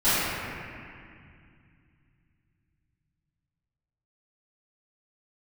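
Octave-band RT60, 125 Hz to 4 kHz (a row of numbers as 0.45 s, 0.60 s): 4.4 s, 3.3 s, 2.2 s, 2.2 s, 2.4 s, 1.9 s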